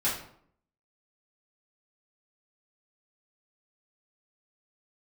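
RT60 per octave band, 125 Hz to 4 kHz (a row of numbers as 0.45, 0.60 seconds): 0.75, 0.75, 0.65, 0.60, 0.50, 0.40 seconds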